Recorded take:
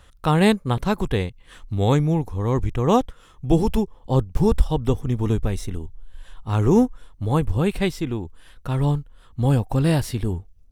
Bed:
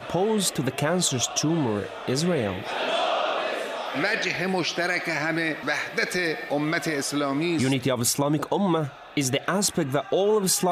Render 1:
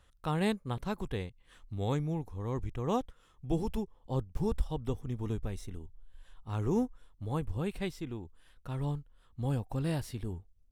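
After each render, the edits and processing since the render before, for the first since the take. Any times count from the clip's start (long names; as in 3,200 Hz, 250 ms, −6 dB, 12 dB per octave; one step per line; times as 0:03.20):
level −13.5 dB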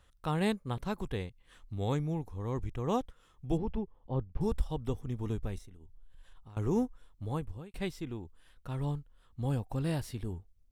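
0:03.57–0:04.41: high-frequency loss of the air 370 metres
0:05.58–0:06.57: downward compressor 16 to 1, threshold −47 dBFS
0:07.29–0:07.74: fade out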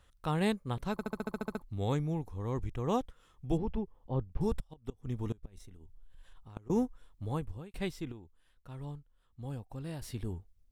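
0:00.92: stutter in place 0.07 s, 10 plays
0:04.57–0:06.70: gate with flip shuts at −24 dBFS, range −25 dB
0:08.12–0:10.02: clip gain −8.5 dB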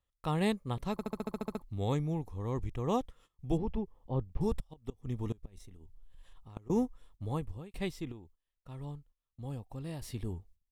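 notch filter 1,500 Hz, Q 6.3
noise gate −58 dBFS, range −20 dB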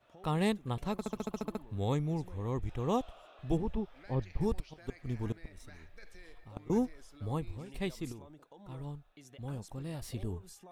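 mix in bed −31.5 dB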